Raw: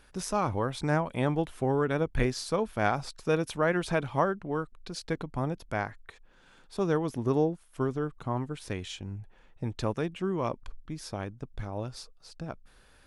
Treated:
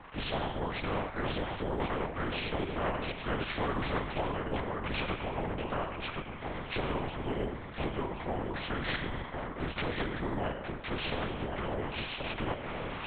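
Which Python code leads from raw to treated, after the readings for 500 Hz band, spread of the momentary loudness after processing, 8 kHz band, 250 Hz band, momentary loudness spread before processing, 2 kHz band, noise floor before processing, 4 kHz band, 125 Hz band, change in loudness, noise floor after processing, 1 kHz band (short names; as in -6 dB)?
-5.5 dB, 4 LU, under -30 dB, -4.5 dB, 14 LU, +0.5 dB, -59 dBFS, +3.5 dB, -5.0 dB, -4.0 dB, -43 dBFS, -2.0 dB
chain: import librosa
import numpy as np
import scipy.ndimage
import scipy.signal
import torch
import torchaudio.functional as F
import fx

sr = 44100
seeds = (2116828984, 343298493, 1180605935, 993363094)

p1 = fx.partial_stretch(x, sr, pct=79)
p2 = fx.recorder_agc(p1, sr, target_db=-19.5, rise_db_per_s=13.0, max_gain_db=30)
p3 = fx.bandpass_edges(p2, sr, low_hz=150.0, high_hz=2900.0)
p4 = fx.comb_fb(p3, sr, f0_hz=190.0, decay_s=1.0, harmonics='all', damping=0.0, mix_pct=80)
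p5 = p4 + fx.echo_single(p4, sr, ms=1071, db=-8.0, dry=0)
p6 = fx.lpc_vocoder(p5, sr, seeds[0], excitation='whisper', order=8)
p7 = fx.spectral_comp(p6, sr, ratio=2.0)
y = F.gain(torch.from_numpy(p7), 7.5).numpy()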